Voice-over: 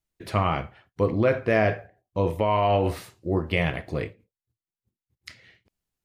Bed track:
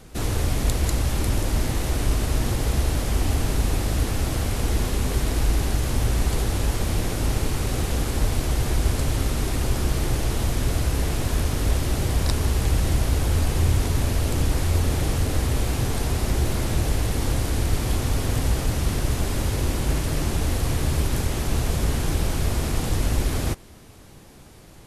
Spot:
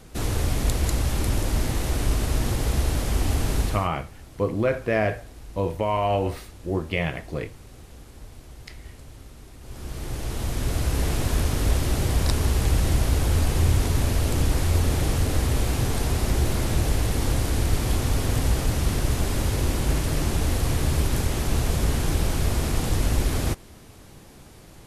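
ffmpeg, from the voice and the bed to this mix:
ffmpeg -i stem1.wav -i stem2.wav -filter_complex "[0:a]adelay=3400,volume=-1.5dB[link_01];[1:a]volume=20dB,afade=type=out:start_time=3.6:duration=0.29:silence=0.1,afade=type=in:start_time=9.61:duration=1.48:silence=0.0891251[link_02];[link_01][link_02]amix=inputs=2:normalize=0" out.wav

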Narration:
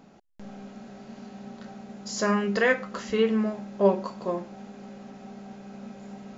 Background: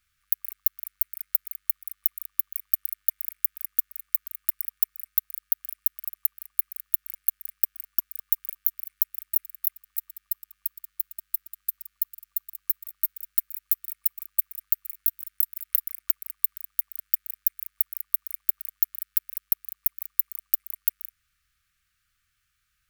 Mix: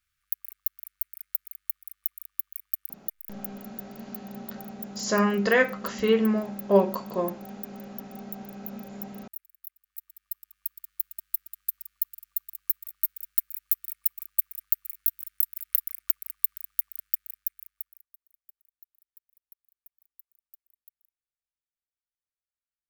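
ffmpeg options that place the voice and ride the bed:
ffmpeg -i stem1.wav -i stem2.wav -filter_complex "[0:a]adelay=2900,volume=1.5dB[link_01];[1:a]volume=9.5dB,afade=type=out:start_time=2.64:duration=1:silence=0.298538,afade=type=in:start_time=9.75:duration=1.24:silence=0.16788,afade=type=out:start_time=16.79:duration=1.28:silence=0.0316228[link_02];[link_01][link_02]amix=inputs=2:normalize=0" out.wav

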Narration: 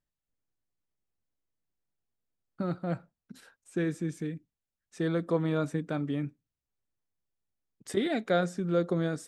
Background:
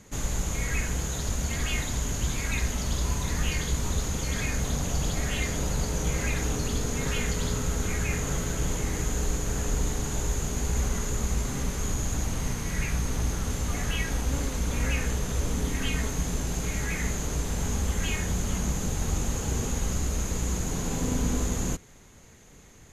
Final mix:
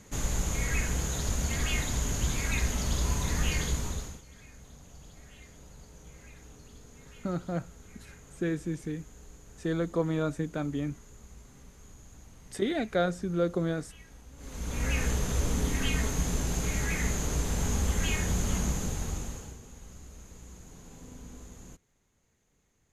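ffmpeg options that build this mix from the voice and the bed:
ffmpeg -i stem1.wav -i stem2.wav -filter_complex "[0:a]adelay=4650,volume=-0.5dB[link_01];[1:a]volume=21.5dB,afade=type=out:start_time=3.63:duration=0.59:silence=0.0794328,afade=type=in:start_time=14.37:duration=0.67:silence=0.0749894,afade=type=out:start_time=18.56:duration=1.02:silence=0.105925[link_02];[link_01][link_02]amix=inputs=2:normalize=0" out.wav

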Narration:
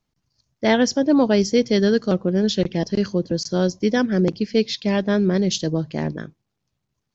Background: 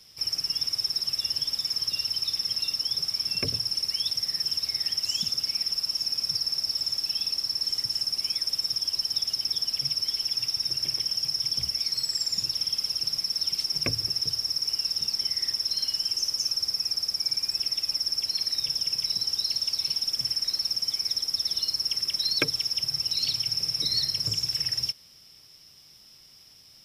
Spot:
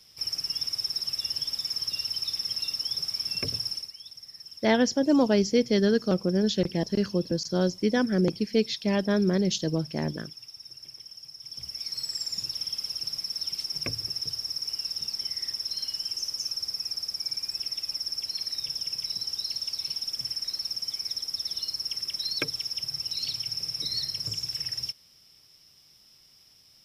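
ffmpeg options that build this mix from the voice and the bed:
ffmpeg -i stem1.wav -i stem2.wav -filter_complex "[0:a]adelay=4000,volume=-5dB[link_01];[1:a]volume=10dB,afade=type=out:start_time=3.67:duration=0.25:silence=0.188365,afade=type=in:start_time=11.4:duration=0.64:silence=0.237137[link_02];[link_01][link_02]amix=inputs=2:normalize=0" out.wav

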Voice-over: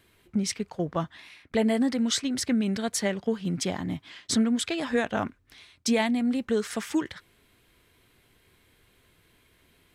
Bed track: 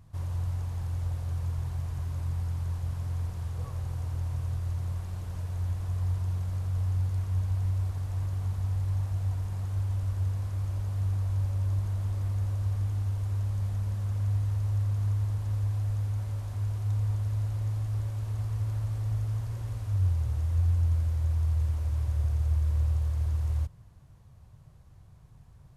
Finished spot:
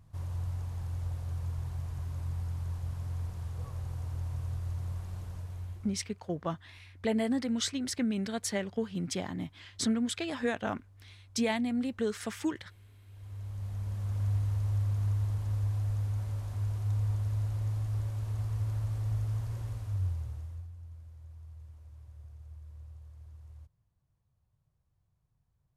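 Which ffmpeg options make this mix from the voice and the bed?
ffmpeg -i stem1.wav -i stem2.wav -filter_complex "[0:a]adelay=5500,volume=-5.5dB[link_01];[1:a]volume=21dB,afade=type=out:start_time=5.2:duration=0.89:silence=0.0707946,afade=type=in:start_time=13.06:duration=1.17:silence=0.0562341,afade=type=out:start_time=19.57:duration=1.12:silence=0.1[link_02];[link_01][link_02]amix=inputs=2:normalize=0" out.wav

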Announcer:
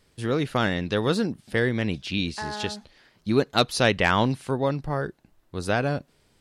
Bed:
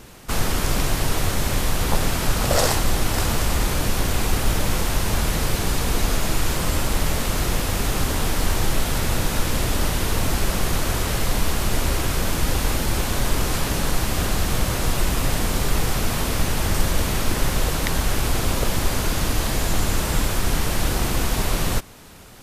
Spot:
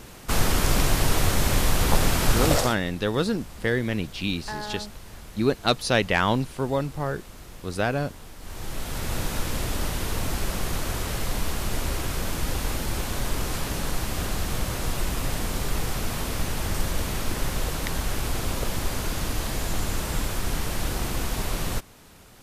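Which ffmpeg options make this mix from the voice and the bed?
ffmpeg -i stem1.wav -i stem2.wav -filter_complex "[0:a]adelay=2100,volume=-1dB[link_01];[1:a]volume=15.5dB,afade=type=out:start_time=2.46:duration=0.29:silence=0.0841395,afade=type=in:start_time=8.4:duration=0.79:silence=0.16788[link_02];[link_01][link_02]amix=inputs=2:normalize=0" out.wav

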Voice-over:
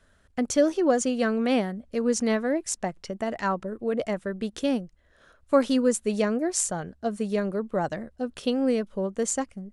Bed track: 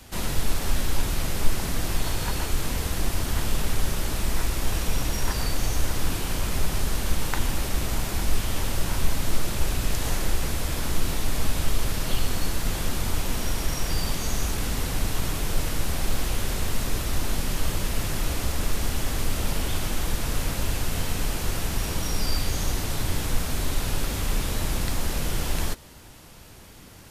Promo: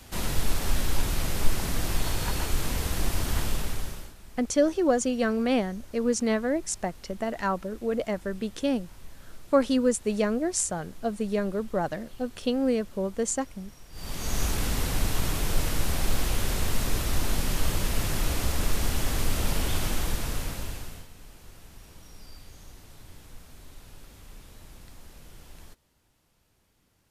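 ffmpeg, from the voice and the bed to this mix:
ffmpeg -i stem1.wav -i stem2.wav -filter_complex "[0:a]adelay=4000,volume=-1dB[link_01];[1:a]volume=21dB,afade=type=out:start_time=3.37:duration=0.77:silence=0.0841395,afade=type=in:start_time=13.92:duration=0.51:silence=0.0749894,afade=type=out:start_time=19.88:duration=1.2:silence=0.0841395[link_02];[link_01][link_02]amix=inputs=2:normalize=0" out.wav

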